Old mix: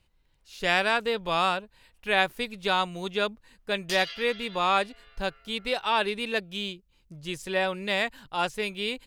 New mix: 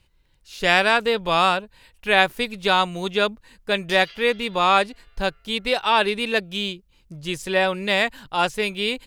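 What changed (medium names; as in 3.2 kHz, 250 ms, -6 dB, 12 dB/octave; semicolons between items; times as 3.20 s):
speech +6.5 dB; background -4.5 dB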